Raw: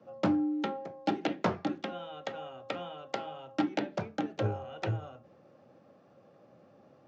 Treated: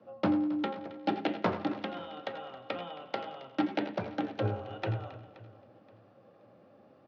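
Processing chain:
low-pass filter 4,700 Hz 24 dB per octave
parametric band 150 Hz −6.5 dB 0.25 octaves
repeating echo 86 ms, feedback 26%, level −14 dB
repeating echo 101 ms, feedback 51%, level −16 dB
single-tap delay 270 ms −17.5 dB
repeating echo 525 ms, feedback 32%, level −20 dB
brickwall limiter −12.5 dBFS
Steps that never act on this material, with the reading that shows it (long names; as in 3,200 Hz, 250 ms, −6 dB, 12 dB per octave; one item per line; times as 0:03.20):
brickwall limiter −12.5 dBFS: peak of its input −14.0 dBFS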